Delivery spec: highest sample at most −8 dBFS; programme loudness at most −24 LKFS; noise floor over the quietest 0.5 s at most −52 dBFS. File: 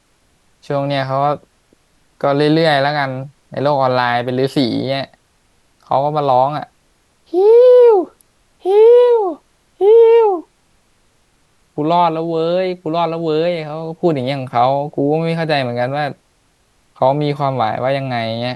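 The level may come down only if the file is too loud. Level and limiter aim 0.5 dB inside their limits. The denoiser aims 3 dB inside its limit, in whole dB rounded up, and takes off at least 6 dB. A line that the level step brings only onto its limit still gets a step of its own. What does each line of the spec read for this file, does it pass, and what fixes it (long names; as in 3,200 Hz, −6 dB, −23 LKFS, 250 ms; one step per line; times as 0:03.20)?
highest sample −2.5 dBFS: out of spec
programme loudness −15.0 LKFS: out of spec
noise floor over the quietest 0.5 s −58 dBFS: in spec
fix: level −9.5 dB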